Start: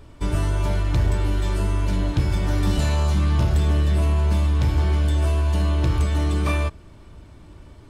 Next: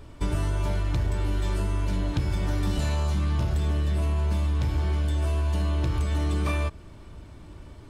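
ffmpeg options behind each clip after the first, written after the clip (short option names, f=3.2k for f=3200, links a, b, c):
-af "acompressor=threshold=-22dB:ratio=6"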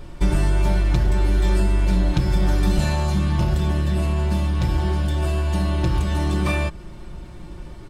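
-af "lowshelf=f=150:g=3.5,aecho=1:1:5.6:0.65,volume=5dB"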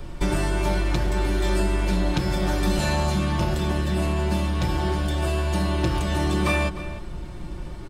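-filter_complex "[0:a]acrossover=split=220|590|1600[a][b][c][d];[a]acompressor=threshold=-25dB:ratio=6[e];[e][b][c][d]amix=inputs=4:normalize=0,asplit=2[f][g];[g]adelay=303.2,volume=-13dB,highshelf=f=4k:g=-6.82[h];[f][h]amix=inputs=2:normalize=0,volume=2dB"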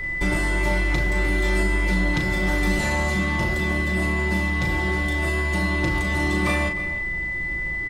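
-filter_complex "[0:a]aeval=exprs='val(0)+0.0447*sin(2*PI*2000*n/s)':c=same,asplit=2[a][b];[b]adelay=37,volume=-6.5dB[c];[a][c]amix=inputs=2:normalize=0,volume=-1.5dB"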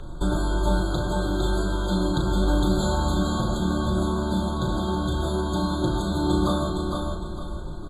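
-af "aecho=1:1:457|914|1371|1828:0.596|0.191|0.061|0.0195,afftfilt=real='re*eq(mod(floor(b*sr/1024/1600),2),0)':imag='im*eq(mod(floor(b*sr/1024/1600),2),0)':win_size=1024:overlap=0.75"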